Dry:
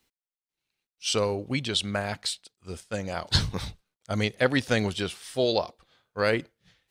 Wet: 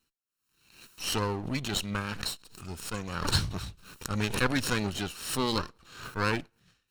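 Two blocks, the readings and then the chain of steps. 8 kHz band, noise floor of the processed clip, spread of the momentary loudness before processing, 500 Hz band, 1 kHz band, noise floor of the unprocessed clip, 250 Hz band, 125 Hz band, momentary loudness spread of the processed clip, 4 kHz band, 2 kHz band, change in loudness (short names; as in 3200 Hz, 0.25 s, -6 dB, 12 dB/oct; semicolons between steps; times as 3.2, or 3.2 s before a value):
0.0 dB, -82 dBFS, 12 LU, -8.5 dB, 0.0 dB, under -85 dBFS, -2.0 dB, -2.0 dB, 13 LU, -3.5 dB, -2.5 dB, -3.5 dB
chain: minimum comb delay 0.73 ms; backwards sustainer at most 78 dB/s; gain -3 dB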